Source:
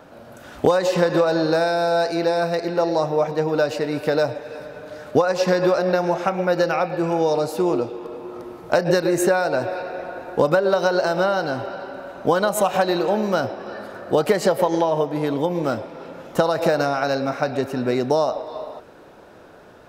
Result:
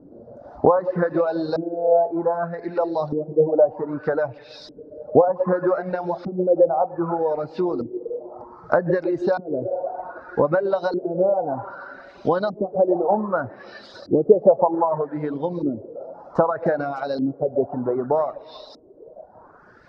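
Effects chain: low-pass that closes with the level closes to 1.2 kHz, closed at -19 dBFS; resonant high shelf 3.7 kHz +10 dB, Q 3; two-band feedback delay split 380 Hz, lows 118 ms, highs 304 ms, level -15 dB; LFO low-pass saw up 0.64 Hz 290–4300 Hz; reverb removal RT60 1.9 s; trim -1 dB

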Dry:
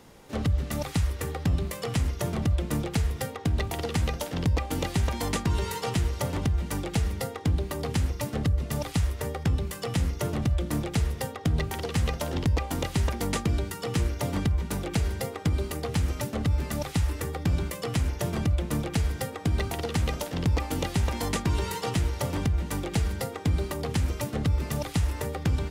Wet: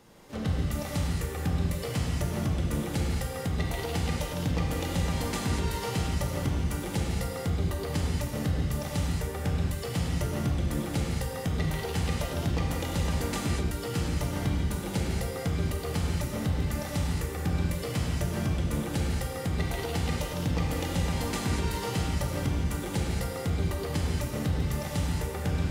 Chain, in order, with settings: gated-style reverb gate 260 ms flat, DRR -2.5 dB; trim -5.5 dB

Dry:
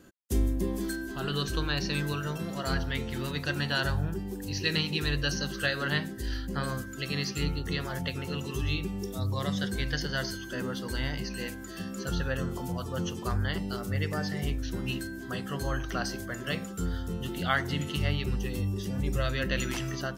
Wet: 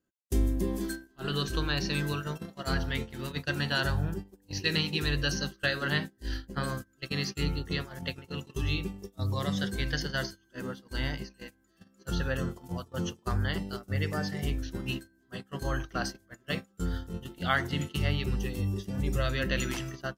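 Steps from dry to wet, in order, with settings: gate -32 dBFS, range -27 dB

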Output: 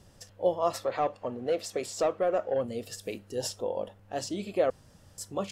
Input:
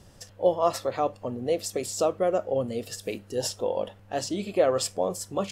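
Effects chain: 0.84–2.65 s: overdrive pedal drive 12 dB, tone 2.4 kHz, clips at -13 dBFS; 3.54–4.16 s: dynamic bell 3 kHz, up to -5 dB, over -52 dBFS, Q 0.72; 4.70–5.18 s: room tone; trim -4 dB

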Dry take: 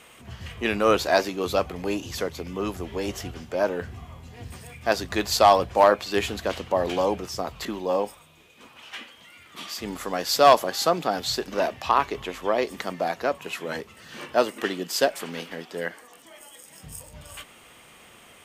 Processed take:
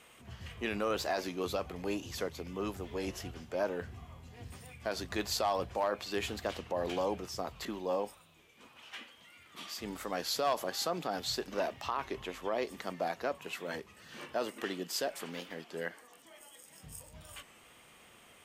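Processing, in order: peak limiter -15 dBFS, peak gain reduction 8 dB; warped record 33 1/3 rpm, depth 100 cents; trim -8 dB

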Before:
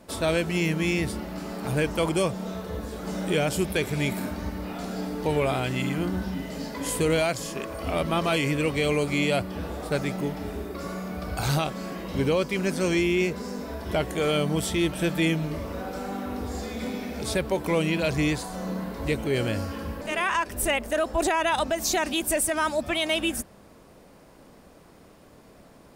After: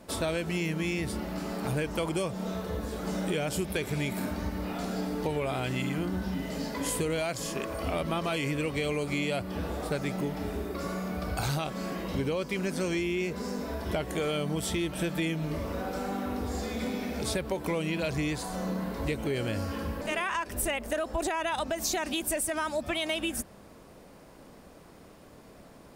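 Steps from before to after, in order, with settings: compression, threshold -27 dBFS, peak gain reduction 7.5 dB

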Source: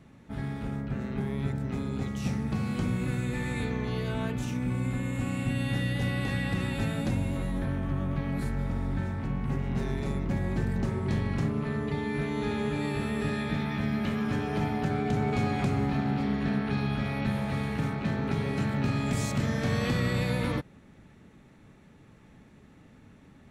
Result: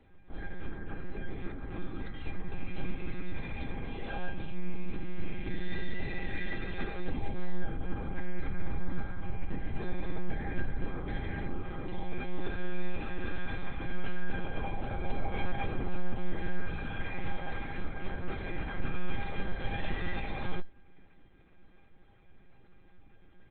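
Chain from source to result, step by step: comb 3.1 ms, depth 87%; monotone LPC vocoder at 8 kHz 180 Hz; feedback comb 800 Hz, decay 0.21 s, harmonics all, mix 90%; trim +9 dB

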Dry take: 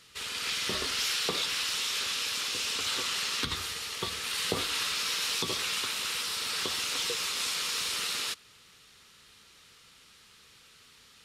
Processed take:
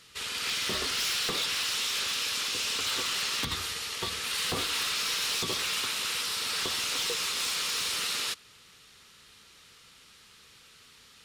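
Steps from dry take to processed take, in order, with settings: wavefolder -25 dBFS; trim +1.5 dB

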